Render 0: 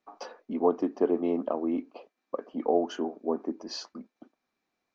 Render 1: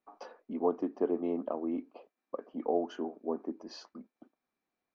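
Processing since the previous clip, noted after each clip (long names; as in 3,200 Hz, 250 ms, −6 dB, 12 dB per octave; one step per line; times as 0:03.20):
high-shelf EQ 3,800 Hz −9.5 dB
level −5 dB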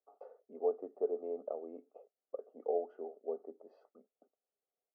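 four-pole ladder band-pass 450 Hz, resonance 65%
comb filter 1.5 ms, depth 72%
level +2 dB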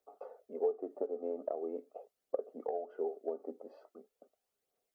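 downward compressor 10 to 1, threshold −39 dBFS, peak gain reduction 12.5 dB
phase shifter 0.42 Hz, delay 4.1 ms, feedback 39%
level +7 dB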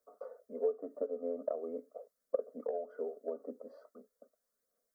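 phaser with its sweep stopped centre 540 Hz, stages 8
level +3 dB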